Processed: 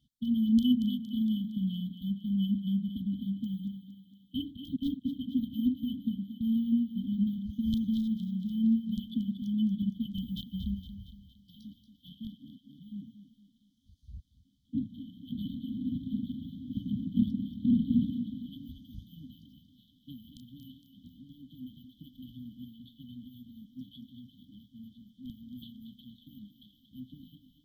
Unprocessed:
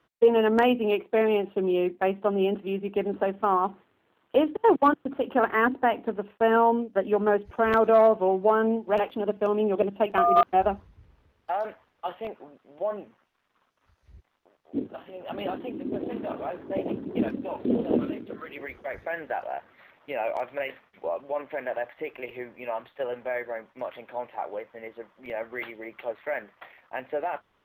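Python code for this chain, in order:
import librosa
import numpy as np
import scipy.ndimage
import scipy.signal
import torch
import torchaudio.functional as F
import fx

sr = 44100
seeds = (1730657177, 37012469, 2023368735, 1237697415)

p1 = fx.dynamic_eq(x, sr, hz=310.0, q=1.2, threshold_db=-35.0, ratio=4.0, max_db=-5)
p2 = fx.brickwall_bandstop(p1, sr, low_hz=280.0, high_hz=3000.0)
p3 = fx.high_shelf(p2, sr, hz=2500.0, db=-7.5)
p4 = p3 + fx.echo_thinned(p3, sr, ms=231, feedback_pct=57, hz=210.0, wet_db=-9, dry=0)
y = F.gain(torch.from_numpy(p4), 6.0).numpy()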